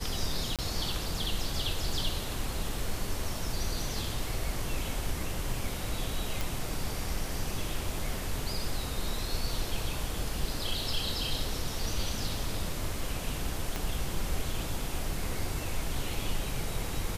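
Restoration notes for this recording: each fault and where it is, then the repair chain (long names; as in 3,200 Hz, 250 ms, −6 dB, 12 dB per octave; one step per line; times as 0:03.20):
0:00.56–0:00.59: drop-out 27 ms
0:06.41: click
0:13.76: click −17 dBFS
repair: click removal
repair the gap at 0:00.56, 27 ms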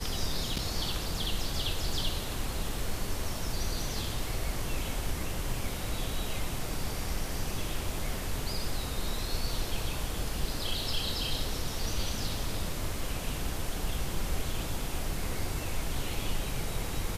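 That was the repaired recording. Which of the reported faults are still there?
0:13.76: click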